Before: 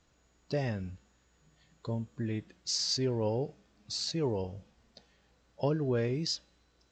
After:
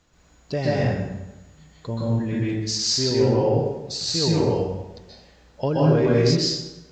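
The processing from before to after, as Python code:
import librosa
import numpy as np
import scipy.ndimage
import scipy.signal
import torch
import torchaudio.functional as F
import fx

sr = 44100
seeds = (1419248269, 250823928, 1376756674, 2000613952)

y = fx.lowpass(x, sr, hz=3700.0, slope=12, at=(2.82, 3.39))
y = fx.rev_plate(y, sr, seeds[0], rt60_s=1.0, hf_ratio=0.7, predelay_ms=115, drr_db=-6.0)
y = F.gain(torch.from_numpy(y), 5.5).numpy()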